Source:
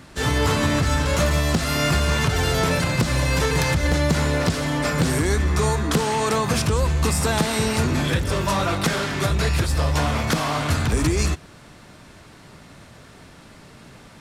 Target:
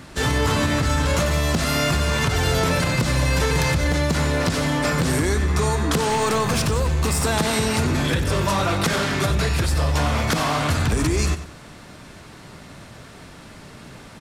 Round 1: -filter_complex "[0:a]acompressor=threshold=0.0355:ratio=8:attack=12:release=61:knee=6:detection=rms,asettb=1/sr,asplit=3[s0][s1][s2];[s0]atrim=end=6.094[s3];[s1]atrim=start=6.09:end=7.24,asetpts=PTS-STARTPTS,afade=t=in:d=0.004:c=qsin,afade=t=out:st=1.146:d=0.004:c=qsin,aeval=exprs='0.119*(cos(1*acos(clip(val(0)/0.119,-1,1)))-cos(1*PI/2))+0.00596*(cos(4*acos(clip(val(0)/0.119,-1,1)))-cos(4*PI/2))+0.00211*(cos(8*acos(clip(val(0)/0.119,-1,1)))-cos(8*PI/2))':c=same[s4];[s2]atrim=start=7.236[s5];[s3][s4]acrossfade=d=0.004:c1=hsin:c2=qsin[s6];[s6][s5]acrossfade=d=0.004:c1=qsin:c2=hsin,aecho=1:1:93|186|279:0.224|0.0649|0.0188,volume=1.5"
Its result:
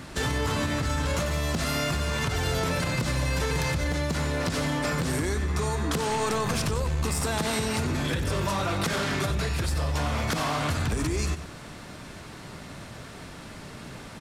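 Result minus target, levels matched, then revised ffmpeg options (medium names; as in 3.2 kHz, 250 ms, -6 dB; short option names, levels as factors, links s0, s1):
compression: peak gain reduction +7.5 dB
-filter_complex "[0:a]acompressor=threshold=0.0944:ratio=8:attack=12:release=61:knee=6:detection=rms,asettb=1/sr,asplit=3[s0][s1][s2];[s0]atrim=end=6.094[s3];[s1]atrim=start=6.09:end=7.24,asetpts=PTS-STARTPTS,afade=t=in:d=0.004:c=qsin,afade=t=out:st=1.146:d=0.004:c=qsin,aeval=exprs='0.119*(cos(1*acos(clip(val(0)/0.119,-1,1)))-cos(1*PI/2))+0.00596*(cos(4*acos(clip(val(0)/0.119,-1,1)))-cos(4*PI/2))+0.00211*(cos(8*acos(clip(val(0)/0.119,-1,1)))-cos(8*PI/2))':c=same[s4];[s2]atrim=start=7.236[s5];[s3][s4]acrossfade=d=0.004:c1=hsin:c2=qsin[s6];[s6][s5]acrossfade=d=0.004:c1=qsin:c2=hsin,aecho=1:1:93|186|279:0.224|0.0649|0.0188,volume=1.5"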